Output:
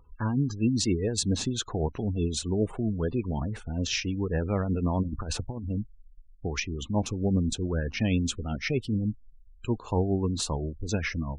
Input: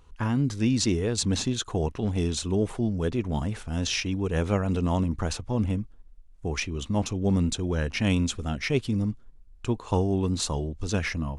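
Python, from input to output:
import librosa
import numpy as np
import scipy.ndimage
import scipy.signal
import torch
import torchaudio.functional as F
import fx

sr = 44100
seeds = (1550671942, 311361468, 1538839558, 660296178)

y = x * (1.0 - 0.36 / 2.0 + 0.36 / 2.0 * np.cos(2.0 * np.pi * 7.6 * (np.arange(len(x)) / sr)))
y = fx.over_compress(y, sr, threshold_db=-31.0, ratio=-0.5, at=(5.02, 5.69), fade=0.02)
y = fx.spec_gate(y, sr, threshold_db=-25, keep='strong')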